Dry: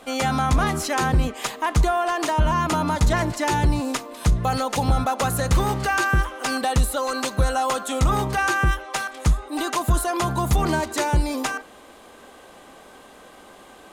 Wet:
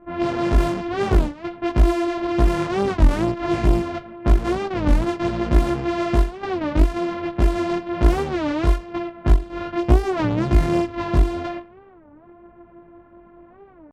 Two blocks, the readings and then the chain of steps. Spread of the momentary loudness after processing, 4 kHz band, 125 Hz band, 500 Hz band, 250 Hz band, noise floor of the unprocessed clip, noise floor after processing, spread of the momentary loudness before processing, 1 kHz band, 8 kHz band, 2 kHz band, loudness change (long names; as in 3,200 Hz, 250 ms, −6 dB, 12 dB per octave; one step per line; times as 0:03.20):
7 LU, −6.0 dB, +1.0 dB, +3.5 dB, +5.0 dB, −47 dBFS, −49 dBFS, 5 LU, −4.5 dB, −14.5 dB, −6.5 dB, +1.0 dB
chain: samples sorted by size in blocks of 128 samples
low-pass that shuts in the quiet parts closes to 1,700 Hz, open at −14 dBFS
high-shelf EQ 2,000 Hz −11.5 dB
multi-voice chorus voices 4, 1.1 Hz, delay 20 ms, depth 3 ms
low-pass that shuts in the quiet parts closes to 1,900 Hz, open at −18 dBFS
wow of a warped record 33 1/3 rpm, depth 250 cents
level +3.5 dB